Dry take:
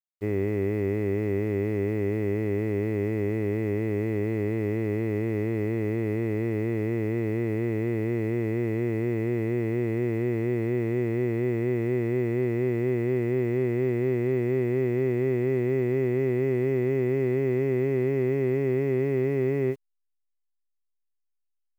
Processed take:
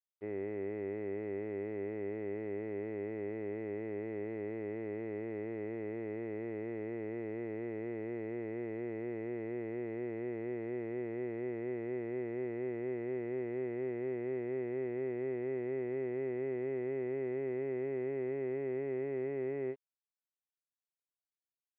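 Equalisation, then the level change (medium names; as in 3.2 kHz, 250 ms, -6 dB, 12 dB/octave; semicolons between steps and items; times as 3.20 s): band-pass filter 1 kHz, Q 1.3; distance through air 230 m; peaking EQ 1.1 kHz -13 dB 0.74 oct; 0.0 dB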